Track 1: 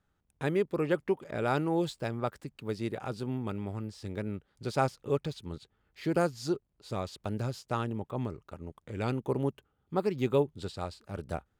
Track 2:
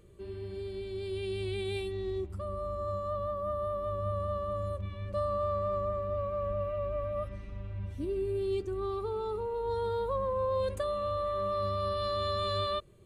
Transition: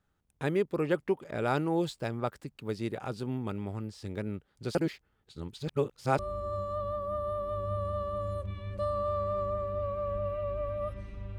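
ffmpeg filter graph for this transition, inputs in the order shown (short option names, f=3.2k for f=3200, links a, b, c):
-filter_complex "[0:a]apad=whole_dur=11.38,atrim=end=11.38,asplit=2[a][b];[a]atrim=end=4.752[c];[b]atrim=start=4.748:end=6.192,asetpts=PTS-STARTPTS,areverse[d];[1:a]atrim=start=2.538:end=7.73[e];[c][d]acrossfade=d=0.004:c1=hsin:c2=hsin[f];[f][e]acrossfade=d=0.004:c1=hsin:c2=hsin"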